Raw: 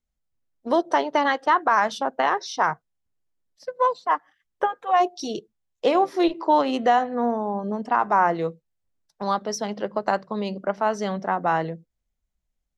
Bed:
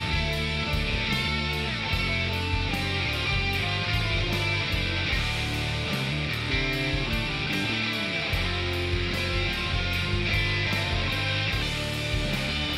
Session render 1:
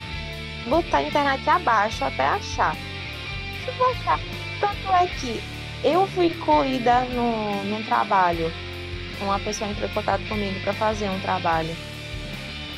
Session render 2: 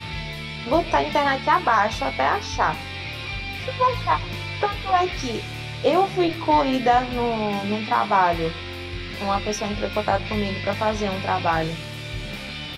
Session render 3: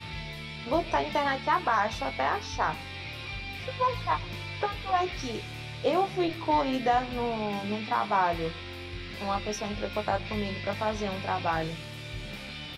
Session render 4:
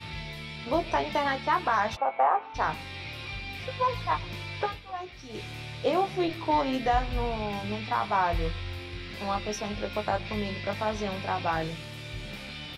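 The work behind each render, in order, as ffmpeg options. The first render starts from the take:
-filter_complex "[1:a]volume=-5.5dB[a];[0:a][a]amix=inputs=2:normalize=0"
-filter_complex "[0:a]asplit=2[a][b];[b]adelay=19,volume=-7dB[c];[a][c]amix=inputs=2:normalize=0,aecho=1:1:116:0.0668"
-af "volume=-7dB"
-filter_complex "[0:a]asplit=3[a][b][c];[a]afade=t=out:st=1.95:d=0.02[d];[b]highpass=470,equalizer=f=530:t=q:w=4:g=5,equalizer=f=780:t=q:w=4:g=9,equalizer=f=1.2k:t=q:w=4:g=4,equalizer=f=1.8k:t=q:w=4:g=-8,lowpass=f=2.1k:w=0.5412,lowpass=f=2.1k:w=1.3066,afade=t=in:st=1.95:d=0.02,afade=t=out:st=2.54:d=0.02[e];[c]afade=t=in:st=2.54:d=0.02[f];[d][e][f]amix=inputs=3:normalize=0,asplit=3[g][h][i];[g]afade=t=out:st=6.83:d=0.02[j];[h]asubboost=boost=5:cutoff=94,afade=t=in:st=6.83:d=0.02,afade=t=out:st=8.78:d=0.02[k];[i]afade=t=in:st=8.78:d=0.02[l];[j][k][l]amix=inputs=3:normalize=0,asplit=3[m][n][o];[m]atrim=end=4.81,asetpts=PTS-STARTPTS,afade=t=out:st=4.69:d=0.12:silence=0.298538[p];[n]atrim=start=4.81:end=5.29,asetpts=PTS-STARTPTS,volume=-10.5dB[q];[o]atrim=start=5.29,asetpts=PTS-STARTPTS,afade=t=in:d=0.12:silence=0.298538[r];[p][q][r]concat=n=3:v=0:a=1"

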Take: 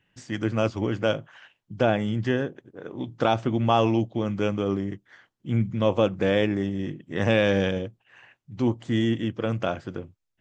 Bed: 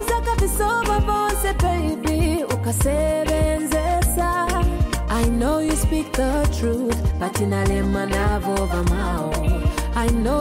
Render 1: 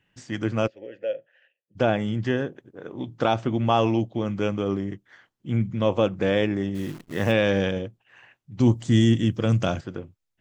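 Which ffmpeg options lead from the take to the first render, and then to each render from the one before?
-filter_complex "[0:a]asplit=3[a][b][c];[a]afade=t=out:st=0.66:d=0.02[d];[b]asplit=3[e][f][g];[e]bandpass=f=530:t=q:w=8,volume=0dB[h];[f]bandpass=f=1.84k:t=q:w=8,volume=-6dB[i];[g]bandpass=f=2.48k:t=q:w=8,volume=-9dB[j];[h][i][j]amix=inputs=3:normalize=0,afade=t=in:st=0.66:d=0.02,afade=t=out:st=1.75:d=0.02[k];[c]afade=t=in:st=1.75:d=0.02[l];[d][k][l]amix=inputs=3:normalize=0,asplit=3[m][n][o];[m]afade=t=out:st=6.74:d=0.02[p];[n]acrusher=bits=8:dc=4:mix=0:aa=0.000001,afade=t=in:st=6.74:d=0.02,afade=t=out:st=7.31:d=0.02[q];[o]afade=t=in:st=7.31:d=0.02[r];[p][q][r]amix=inputs=3:normalize=0,asettb=1/sr,asplit=3[s][t][u];[s]atrim=end=8.604[v];[t]atrim=start=8.6:end=9.81,asetpts=PTS-STARTPTS,afade=t=in:d=0.004:c=qsin,afade=t=out:st=1.206:d=0.004:c=qsin,bass=f=250:g=9,treble=f=4k:g=14[w];[u]atrim=start=9.806[x];[v][w]acrossfade=d=0.004:c1=hsin:c2=qsin[y];[y][x]acrossfade=d=0.004:c1=qsin:c2=hsin"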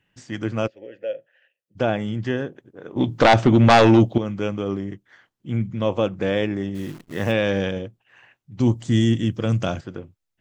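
-filter_complex "[0:a]asettb=1/sr,asplit=3[a][b][c];[a]atrim=end=2.964[d];[b]atrim=start=2.96:end=4.18,asetpts=PTS-STARTPTS,afade=t=in:d=0.004:c=qsin,afade=t=out:st=1.216:d=0.004:c=qsin,aeval=exprs='0.422*sin(PI/2*2.51*val(0)/0.422)':c=same[e];[c]atrim=start=4.176[f];[d][e]acrossfade=d=0.004:c1=hsin:c2=qsin[g];[g][f]acrossfade=d=0.004:c1=qsin:c2=hsin"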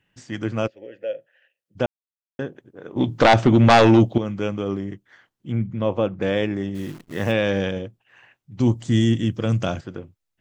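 -filter_complex "[0:a]asettb=1/sr,asplit=3[a][b][c];[a]atrim=end=5.524[d];[b]atrim=start=5.52:end=6.22,asetpts=PTS-STARTPTS,afade=t=in:d=0.004:c=qsin,afade=t=out:st=0.696:d=0.004:c=qsin,aemphasis=mode=reproduction:type=75kf[e];[c]atrim=start=6.216[f];[d][e]acrossfade=d=0.004:c1=hsin:c2=qsin[g];[g][f]acrossfade=d=0.004:c1=qsin:c2=hsin,asplit=3[h][i][j];[h]atrim=end=1.86,asetpts=PTS-STARTPTS,afade=t=out:st=1.856:d=0.004:c=hsin[k];[i]atrim=start=1.86:end=2.39,asetpts=PTS-STARTPTS,volume=0[l];[j]atrim=start=2.39,asetpts=PTS-STARTPTS,afade=t=in:d=0.004:c=hsin[m];[k][l][m]concat=n=3:v=0:a=1"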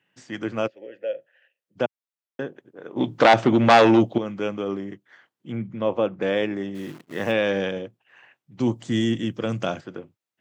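-af "highpass=f=120:w=0.5412,highpass=f=120:w=1.3066,bass=f=250:g=-6,treble=f=4k:g=-4"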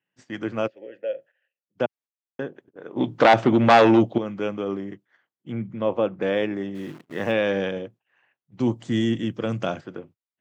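-af "agate=range=-12dB:threshold=-48dB:ratio=16:detection=peak,highshelf=f=4.2k:g=-6"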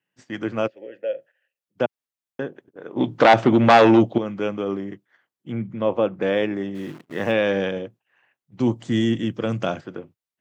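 -af "volume=2dB,alimiter=limit=-3dB:level=0:latency=1"

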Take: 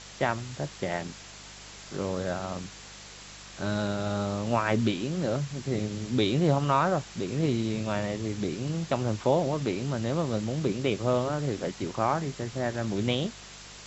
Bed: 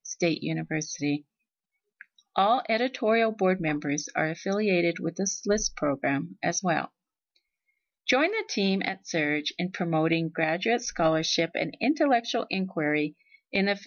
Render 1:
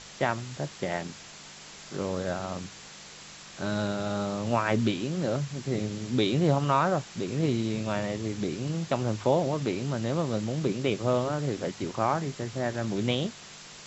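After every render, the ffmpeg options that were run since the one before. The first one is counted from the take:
-af "bandreject=f=50:t=h:w=4,bandreject=f=100:t=h:w=4"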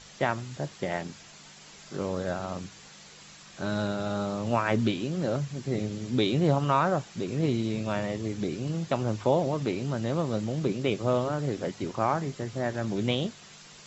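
-af "afftdn=nr=6:nf=-47"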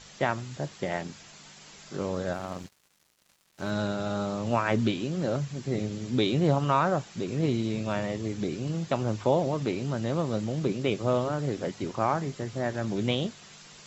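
-filter_complex "[0:a]asettb=1/sr,asplit=3[a][b][c];[a]atrim=end=2.334[d];[b]atrim=start=2.33:end=3.7,asetpts=PTS-STARTPTS,afade=t=in:d=0.004:c=qsin,afade=t=out:st=1.366:d=0.004:c=qsin,aeval=exprs='sgn(val(0))*max(abs(val(0))-0.00596,0)':c=same[e];[c]atrim=start=3.696[f];[d][e]acrossfade=d=0.004:c1=hsin:c2=qsin[g];[g][f]acrossfade=d=0.004:c1=qsin:c2=hsin"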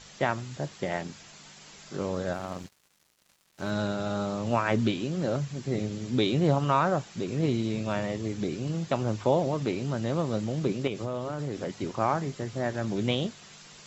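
-filter_complex "[0:a]asettb=1/sr,asplit=3[a][b][c];[a]atrim=end=10.874[d];[b]atrim=start=10.87:end=11.7,asetpts=PTS-STARTPTS,afade=t=in:d=0.004:c=qsin,afade=t=out:st=0.826:d=0.004:c=qsin,acompressor=threshold=-27dB:ratio=6:attack=3.2:release=140:knee=1:detection=peak[e];[c]atrim=start=11.696[f];[d][e]acrossfade=d=0.004:c1=hsin:c2=qsin[g];[g][f]acrossfade=d=0.004:c1=qsin:c2=hsin"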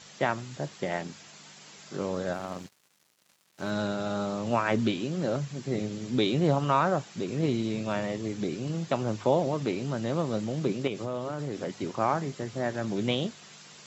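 -af "highpass=120"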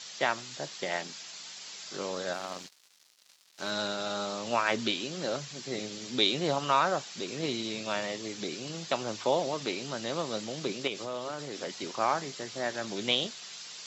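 -af "highpass=f=550:p=1,equalizer=f=4.6k:t=o:w=1.5:g=9"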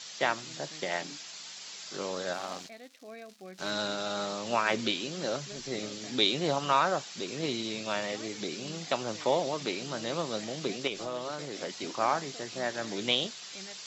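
-filter_complex "[1:a]volume=-23dB[a];[0:a][a]amix=inputs=2:normalize=0"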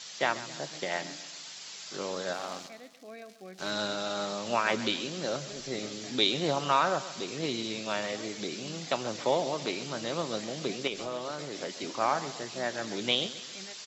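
-af "aecho=1:1:134|268|402|536:0.178|0.0818|0.0376|0.0173"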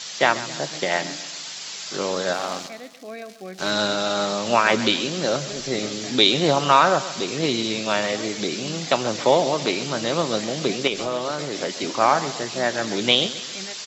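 -af "volume=10dB,alimiter=limit=-2dB:level=0:latency=1"

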